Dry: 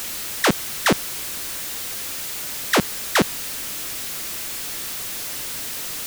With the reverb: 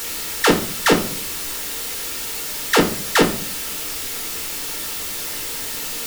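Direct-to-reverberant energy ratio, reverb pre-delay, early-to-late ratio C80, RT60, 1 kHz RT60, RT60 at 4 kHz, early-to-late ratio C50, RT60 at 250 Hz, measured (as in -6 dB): 0.5 dB, 4 ms, 15.5 dB, 0.50 s, 0.45 s, 0.35 s, 11.0 dB, 0.65 s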